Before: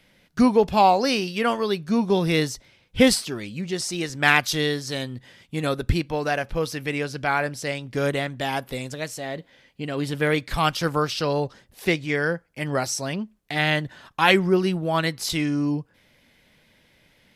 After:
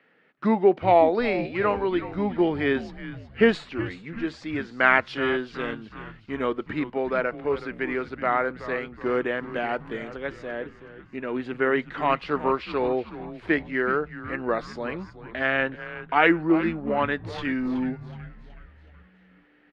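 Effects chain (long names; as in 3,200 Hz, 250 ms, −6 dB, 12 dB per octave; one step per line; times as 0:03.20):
Chebyshev band-pass filter 330–2,200 Hz, order 2
speed change −12%
echo with shifted repeats 372 ms, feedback 50%, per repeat −110 Hz, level −13.5 dB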